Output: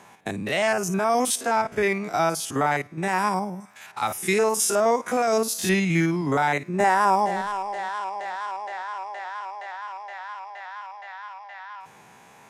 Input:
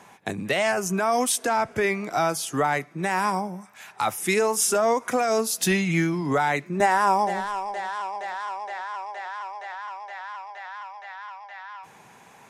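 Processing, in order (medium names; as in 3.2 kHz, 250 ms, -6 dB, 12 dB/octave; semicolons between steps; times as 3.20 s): spectrogram pixelated in time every 50 ms; trim +1.5 dB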